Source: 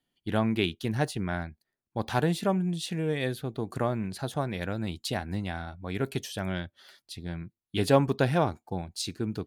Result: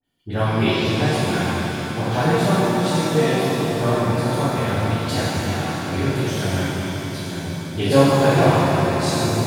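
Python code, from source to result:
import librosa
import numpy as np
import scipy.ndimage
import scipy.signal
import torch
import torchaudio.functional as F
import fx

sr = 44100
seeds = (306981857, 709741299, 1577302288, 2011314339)

p1 = fx.dispersion(x, sr, late='highs', ms=40.0, hz=1900.0)
p2 = p1 + fx.echo_swell(p1, sr, ms=84, loudest=5, wet_db=-15.5, dry=0)
p3 = fx.rev_shimmer(p2, sr, seeds[0], rt60_s=2.2, semitones=7, shimmer_db=-8, drr_db=-10.5)
y = p3 * 10.0 ** (-2.0 / 20.0)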